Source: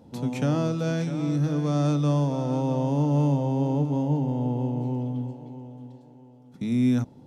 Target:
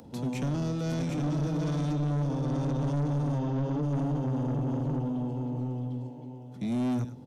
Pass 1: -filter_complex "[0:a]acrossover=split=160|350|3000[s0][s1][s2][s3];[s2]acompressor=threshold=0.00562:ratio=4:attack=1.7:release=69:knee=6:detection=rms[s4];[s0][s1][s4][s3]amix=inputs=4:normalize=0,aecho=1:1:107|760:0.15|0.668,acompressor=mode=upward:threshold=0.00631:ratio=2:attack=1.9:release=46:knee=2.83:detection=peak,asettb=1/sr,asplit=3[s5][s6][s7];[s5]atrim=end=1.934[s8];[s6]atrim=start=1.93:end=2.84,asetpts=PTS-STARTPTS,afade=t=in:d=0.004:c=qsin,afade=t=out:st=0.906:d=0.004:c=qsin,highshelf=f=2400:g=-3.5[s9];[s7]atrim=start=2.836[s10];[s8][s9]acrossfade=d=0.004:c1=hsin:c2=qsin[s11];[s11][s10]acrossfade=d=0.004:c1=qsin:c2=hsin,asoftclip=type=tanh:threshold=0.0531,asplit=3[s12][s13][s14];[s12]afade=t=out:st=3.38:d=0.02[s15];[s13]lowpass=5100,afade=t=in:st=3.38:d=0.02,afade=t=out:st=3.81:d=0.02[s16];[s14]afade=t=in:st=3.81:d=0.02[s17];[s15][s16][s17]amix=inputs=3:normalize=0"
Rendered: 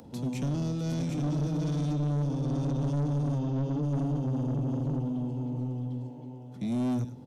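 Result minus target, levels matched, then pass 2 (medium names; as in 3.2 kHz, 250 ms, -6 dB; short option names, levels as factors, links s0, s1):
compression: peak gain reduction +7.5 dB
-filter_complex "[0:a]acrossover=split=160|350|3000[s0][s1][s2][s3];[s2]acompressor=threshold=0.0178:ratio=4:attack=1.7:release=69:knee=6:detection=rms[s4];[s0][s1][s4][s3]amix=inputs=4:normalize=0,aecho=1:1:107|760:0.15|0.668,acompressor=mode=upward:threshold=0.00631:ratio=2:attack=1.9:release=46:knee=2.83:detection=peak,asettb=1/sr,asplit=3[s5][s6][s7];[s5]atrim=end=1.934[s8];[s6]atrim=start=1.93:end=2.84,asetpts=PTS-STARTPTS,afade=t=in:d=0.004:c=qsin,afade=t=out:st=0.906:d=0.004:c=qsin,highshelf=f=2400:g=-3.5[s9];[s7]atrim=start=2.836[s10];[s8][s9]acrossfade=d=0.004:c1=hsin:c2=qsin[s11];[s11][s10]acrossfade=d=0.004:c1=qsin:c2=hsin,asoftclip=type=tanh:threshold=0.0531,asplit=3[s12][s13][s14];[s12]afade=t=out:st=3.38:d=0.02[s15];[s13]lowpass=5100,afade=t=in:st=3.38:d=0.02,afade=t=out:st=3.81:d=0.02[s16];[s14]afade=t=in:st=3.81:d=0.02[s17];[s15][s16][s17]amix=inputs=3:normalize=0"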